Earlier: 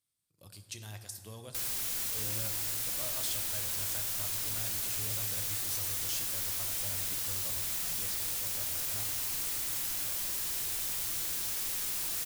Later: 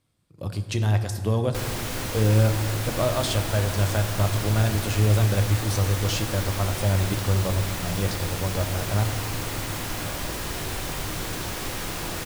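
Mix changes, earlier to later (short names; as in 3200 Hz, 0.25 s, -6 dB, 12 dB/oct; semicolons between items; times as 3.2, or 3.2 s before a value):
speech +5.0 dB; master: remove pre-emphasis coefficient 0.9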